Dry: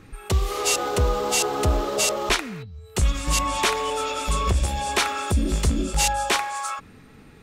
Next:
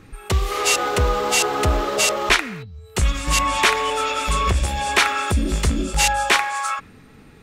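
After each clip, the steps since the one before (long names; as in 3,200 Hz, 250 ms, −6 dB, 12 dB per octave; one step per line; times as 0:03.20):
dynamic equaliser 1,900 Hz, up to +7 dB, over −39 dBFS, Q 0.88
level +1.5 dB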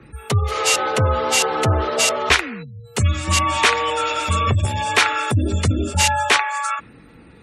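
gate on every frequency bin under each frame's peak −30 dB strong
frequency shifter +31 Hz
level +1 dB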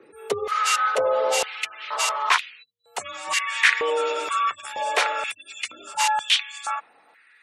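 high-pass on a step sequencer 2.1 Hz 420–3,200 Hz
level −7.5 dB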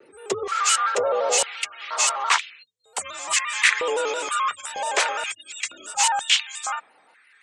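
low-pass with resonance 7,800 Hz, resonance Q 3.2
pitch modulation by a square or saw wave square 5.8 Hz, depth 100 cents
level −1 dB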